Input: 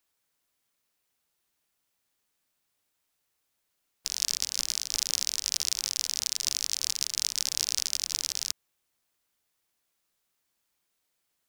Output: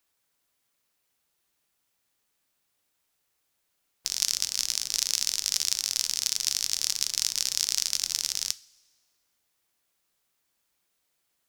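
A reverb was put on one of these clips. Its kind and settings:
coupled-rooms reverb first 0.31 s, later 1.6 s, from −17 dB, DRR 14 dB
level +2 dB

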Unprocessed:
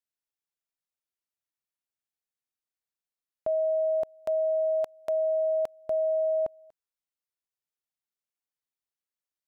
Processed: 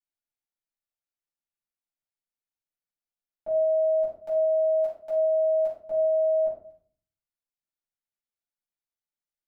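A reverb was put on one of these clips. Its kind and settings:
rectangular room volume 450 cubic metres, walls furnished, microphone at 7.8 metres
level −16 dB

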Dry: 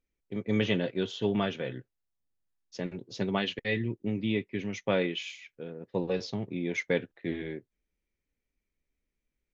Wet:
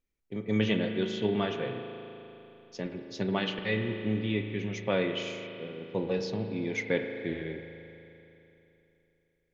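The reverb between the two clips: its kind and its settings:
spring reverb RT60 3.2 s, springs 37 ms, chirp 20 ms, DRR 5.5 dB
level −1 dB

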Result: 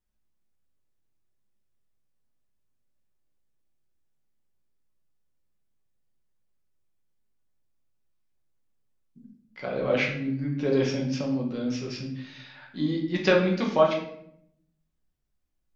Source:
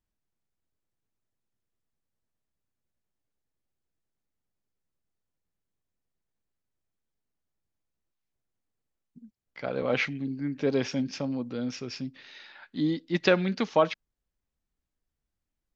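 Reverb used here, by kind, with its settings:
rectangular room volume 140 cubic metres, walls mixed, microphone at 1 metre
level −2 dB

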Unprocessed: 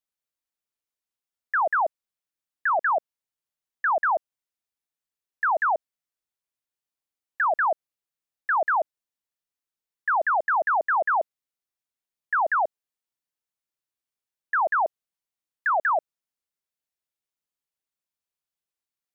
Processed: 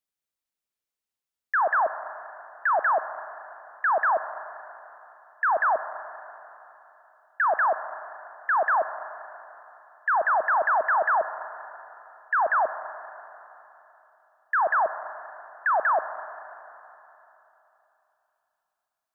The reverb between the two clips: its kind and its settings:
four-comb reverb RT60 3.3 s, combs from 29 ms, DRR 10.5 dB

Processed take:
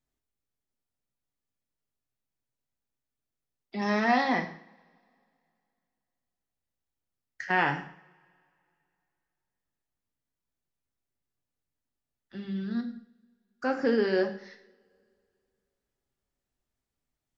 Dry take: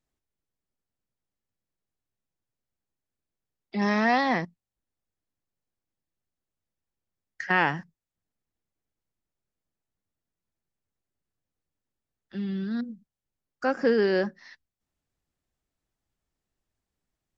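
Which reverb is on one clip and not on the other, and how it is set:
coupled-rooms reverb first 0.55 s, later 2.6 s, from −28 dB, DRR 4 dB
level −3.5 dB

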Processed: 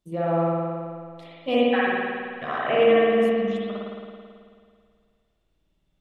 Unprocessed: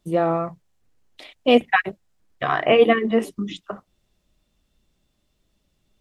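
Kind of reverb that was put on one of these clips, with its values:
spring reverb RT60 2.1 s, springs 54 ms, chirp 70 ms, DRR −7 dB
level −11 dB

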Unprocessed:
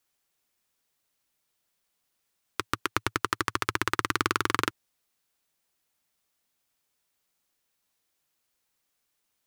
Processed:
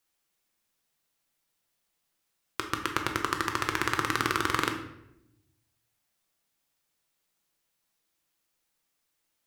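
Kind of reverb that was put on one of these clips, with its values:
rectangular room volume 250 cubic metres, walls mixed, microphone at 0.73 metres
level −2 dB

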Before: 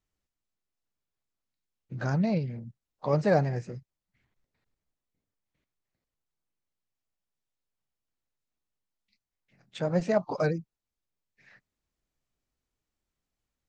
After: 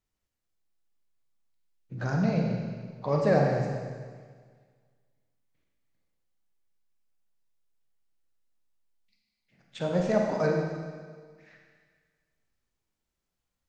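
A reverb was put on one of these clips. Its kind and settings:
four-comb reverb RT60 1.7 s, combs from 33 ms, DRR 0 dB
level −1.5 dB

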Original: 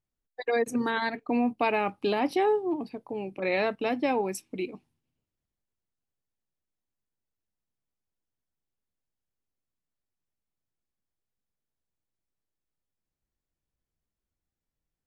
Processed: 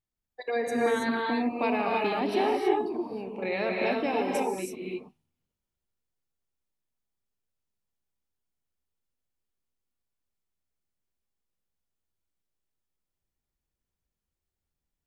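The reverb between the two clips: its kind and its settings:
reverb whose tail is shaped and stops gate 350 ms rising, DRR −2.5 dB
level −4 dB

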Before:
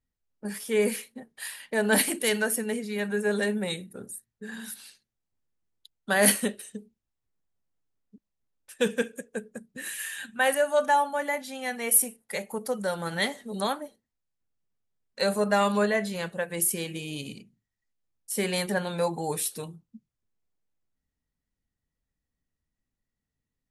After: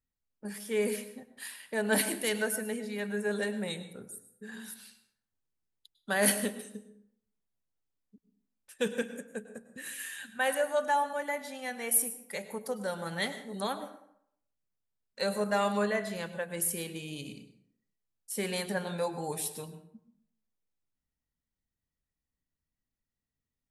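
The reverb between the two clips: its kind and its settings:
dense smooth reverb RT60 0.68 s, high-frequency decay 0.6×, pre-delay 90 ms, DRR 11.5 dB
level −5.5 dB

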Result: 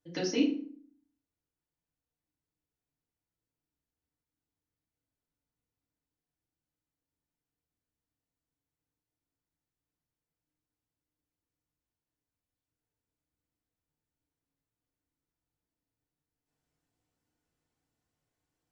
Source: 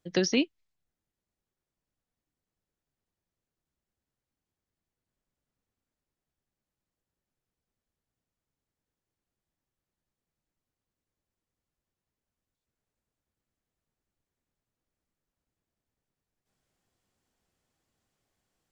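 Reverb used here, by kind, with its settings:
feedback delay network reverb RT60 0.52 s, low-frequency decay 1.4×, high-frequency decay 0.65×, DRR −5 dB
level −11.5 dB

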